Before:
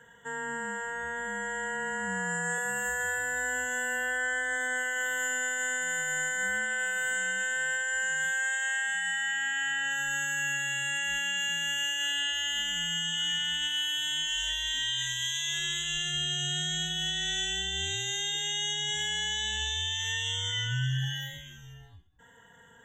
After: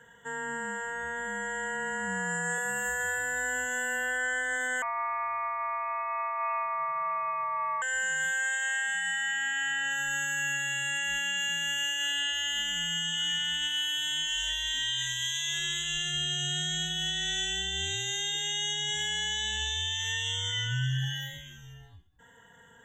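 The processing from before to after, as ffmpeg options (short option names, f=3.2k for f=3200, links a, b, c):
-filter_complex "[0:a]asettb=1/sr,asplit=3[a][b][c];[a]atrim=end=4.824[d];[b]atrim=start=4.82:end=7.82,asetpts=PTS-STARTPTS,afade=t=in:d=0.004:c=qsin,afade=t=out:st=2.996:d=0.004:c=qsin,lowpass=f=2.3k:t=q:w=0.5098,lowpass=f=2.3k:t=q:w=0.6013,lowpass=f=2.3k:t=q:w=0.9,lowpass=f=2.3k:t=q:w=2.563,afreqshift=-2700[e];[c]atrim=start=7.816[f];[d][e]acrossfade=d=0.004:c1=hsin:c2=qsin[g];[g][f]acrossfade=d=0.004:c1=qsin:c2=hsin"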